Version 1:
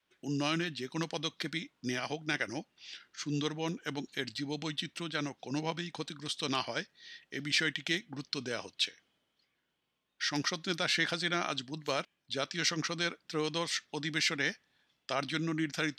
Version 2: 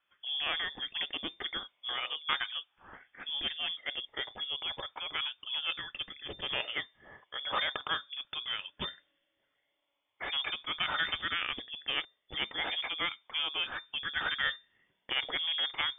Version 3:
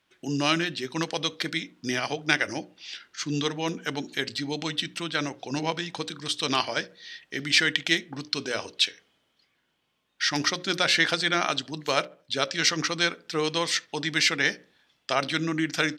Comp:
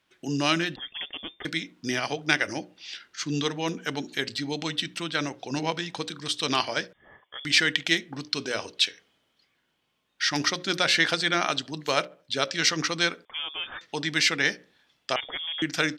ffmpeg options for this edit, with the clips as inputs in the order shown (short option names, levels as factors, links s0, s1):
-filter_complex "[1:a]asplit=4[s0][s1][s2][s3];[2:a]asplit=5[s4][s5][s6][s7][s8];[s4]atrim=end=0.762[s9];[s0]atrim=start=0.758:end=1.452[s10];[s5]atrim=start=1.448:end=6.932[s11];[s1]atrim=start=6.928:end=7.452[s12];[s6]atrim=start=7.448:end=13.252[s13];[s2]atrim=start=13.248:end=13.812[s14];[s7]atrim=start=13.808:end=15.162[s15];[s3]atrim=start=15.158:end=15.622[s16];[s8]atrim=start=15.618[s17];[s9][s10]acrossfade=d=0.004:c1=hsin:c2=hsin[s18];[s18][s11]acrossfade=d=0.004:c1=hsin:c2=hsin[s19];[s19][s12]acrossfade=d=0.004:c1=hsin:c2=hsin[s20];[s20][s13]acrossfade=d=0.004:c1=hsin:c2=hsin[s21];[s21][s14]acrossfade=d=0.004:c1=hsin:c2=hsin[s22];[s22][s15]acrossfade=d=0.004:c1=hsin:c2=hsin[s23];[s23][s16]acrossfade=d=0.004:c1=hsin:c2=hsin[s24];[s24][s17]acrossfade=d=0.004:c1=hsin:c2=hsin"